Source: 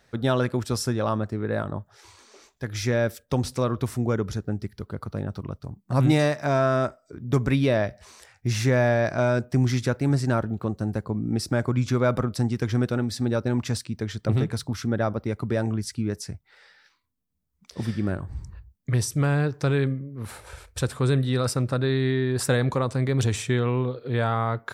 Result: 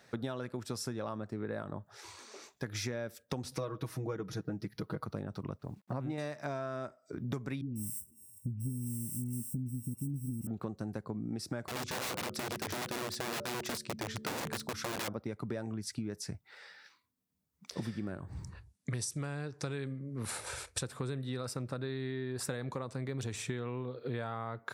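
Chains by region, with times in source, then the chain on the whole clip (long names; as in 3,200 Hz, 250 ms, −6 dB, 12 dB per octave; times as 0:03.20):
0:03.51–0:05.06: parametric band 7,700 Hz −11 dB 0.23 octaves + comb filter 6.3 ms, depth 90%
0:05.59–0:06.18: low-pass filter 1,100 Hz 6 dB per octave + low-shelf EQ 280 Hz −5 dB + bit-depth reduction 12 bits, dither none
0:07.61–0:10.47: samples sorted by size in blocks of 16 samples + elliptic band-stop filter 250–8,400 Hz + all-pass dispersion highs, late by 149 ms, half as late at 1,500 Hz
0:11.65–0:15.08: hum removal 73.01 Hz, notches 8 + wrap-around overflow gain 23.5 dB
0:18.47–0:20.83: Butterworth low-pass 11,000 Hz 48 dB per octave + high-shelf EQ 3,800 Hz +9 dB
whole clip: high-pass filter 120 Hz; notch filter 3,100 Hz, Q 26; downward compressor 12 to 1, threshold −35 dBFS; level +1 dB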